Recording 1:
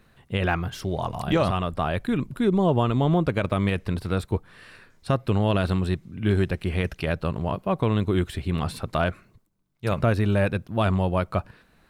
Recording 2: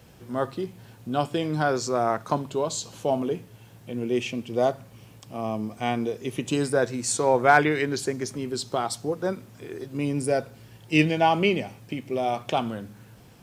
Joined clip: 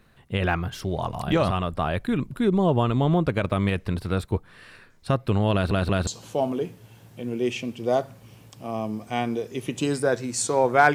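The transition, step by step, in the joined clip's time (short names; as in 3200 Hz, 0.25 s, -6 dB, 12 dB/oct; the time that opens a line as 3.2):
recording 1
5.53 stutter in place 0.18 s, 3 plays
6.07 switch to recording 2 from 2.77 s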